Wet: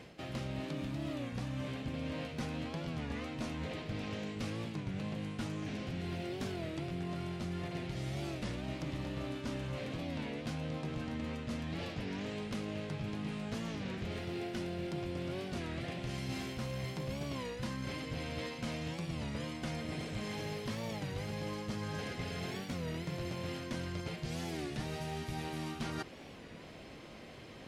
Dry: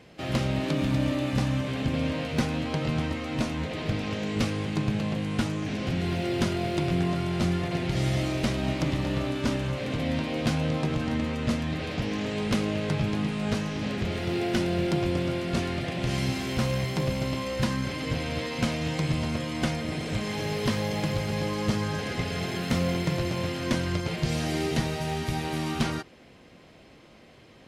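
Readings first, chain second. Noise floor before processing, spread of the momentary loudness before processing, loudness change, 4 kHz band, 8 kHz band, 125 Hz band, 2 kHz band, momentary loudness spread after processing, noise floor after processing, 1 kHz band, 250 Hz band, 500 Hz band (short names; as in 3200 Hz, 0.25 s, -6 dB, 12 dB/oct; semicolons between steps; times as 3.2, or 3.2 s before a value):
-52 dBFS, 4 LU, -11.5 dB, -11.0 dB, -11.0 dB, -11.5 dB, -11.0 dB, 1 LU, -50 dBFS, -11.0 dB, -11.5 dB, -11.0 dB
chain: reverse; compressor 5:1, threshold -40 dBFS, peak gain reduction 17.5 dB; reverse; record warp 33 1/3 rpm, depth 160 cents; gain +2 dB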